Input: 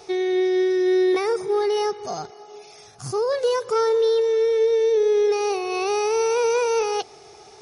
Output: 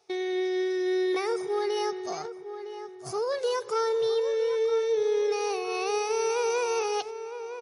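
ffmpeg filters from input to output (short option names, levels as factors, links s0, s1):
-filter_complex "[0:a]highpass=72,lowshelf=f=410:g=-7,agate=range=0.158:threshold=0.0158:ratio=16:detection=peak,asplit=2[s0][s1];[s1]adelay=960,lowpass=f=2200:p=1,volume=0.316,asplit=2[s2][s3];[s3]adelay=960,lowpass=f=2200:p=1,volume=0.35,asplit=2[s4][s5];[s5]adelay=960,lowpass=f=2200:p=1,volume=0.35,asplit=2[s6][s7];[s7]adelay=960,lowpass=f=2200:p=1,volume=0.35[s8];[s2][s4][s6][s8]amix=inputs=4:normalize=0[s9];[s0][s9]amix=inputs=2:normalize=0,volume=0.631"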